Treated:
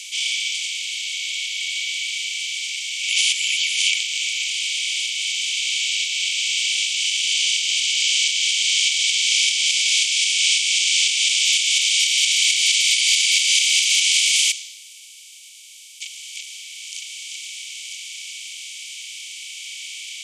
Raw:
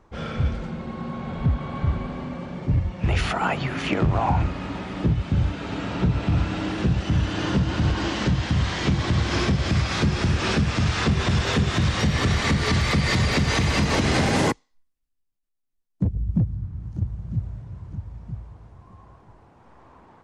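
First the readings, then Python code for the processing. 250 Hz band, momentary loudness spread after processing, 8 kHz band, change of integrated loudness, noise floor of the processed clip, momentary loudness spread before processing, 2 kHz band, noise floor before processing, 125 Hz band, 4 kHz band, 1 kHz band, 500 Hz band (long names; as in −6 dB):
below −40 dB, 17 LU, +19.5 dB, +6.5 dB, −43 dBFS, 12 LU, +7.0 dB, −71 dBFS, below −40 dB, +15.0 dB, below −40 dB, below −40 dB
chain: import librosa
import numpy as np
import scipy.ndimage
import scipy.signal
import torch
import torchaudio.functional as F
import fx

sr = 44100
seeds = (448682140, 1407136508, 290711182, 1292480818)

y = fx.bin_compress(x, sr, power=0.4)
y = scipy.signal.sosfilt(scipy.signal.cheby1(6, 9, 2200.0, 'highpass', fs=sr, output='sos'), y)
y = fx.high_shelf(y, sr, hz=2800.0, db=8.5)
y = y * librosa.db_to_amplitude(7.5)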